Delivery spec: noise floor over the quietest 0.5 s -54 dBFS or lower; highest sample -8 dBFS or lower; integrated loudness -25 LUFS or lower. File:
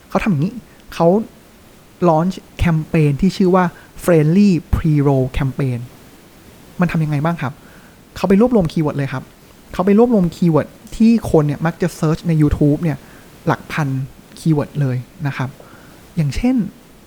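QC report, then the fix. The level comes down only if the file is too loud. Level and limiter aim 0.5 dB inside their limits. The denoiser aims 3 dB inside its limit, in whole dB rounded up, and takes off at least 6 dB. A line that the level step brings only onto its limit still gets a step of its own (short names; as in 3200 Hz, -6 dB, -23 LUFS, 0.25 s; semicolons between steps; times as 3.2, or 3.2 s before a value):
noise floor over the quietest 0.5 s -44 dBFS: fail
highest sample -1.5 dBFS: fail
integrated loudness -17.0 LUFS: fail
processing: denoiser 6 dB, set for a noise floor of -44 dBFS; gain -8.5 dB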